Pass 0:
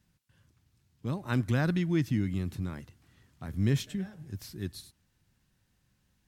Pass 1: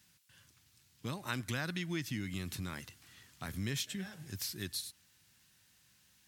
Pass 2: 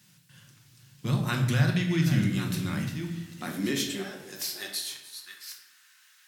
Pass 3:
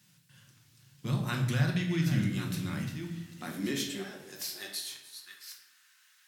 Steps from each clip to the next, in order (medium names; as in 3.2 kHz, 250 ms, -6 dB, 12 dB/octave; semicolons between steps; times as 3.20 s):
high-pass 70 Hz; tilt shelf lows -8 dB, about 1.2 kHz; compression 2.5:1, threshold -42 dBFS, peak gain reduction 10.5 dB; trim +4.5 dB
chunks repeated in reverse 621 ms, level -9.5 dB; high-pass sweep 130 Hz -> 1.4 kHz, 2.67–5.55 s; simulated room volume 300 m³, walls mixed, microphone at 0.93 m; trim +5 dB
flange 0.38 Hz, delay 6.3 ms, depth 9.3 ms, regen -74%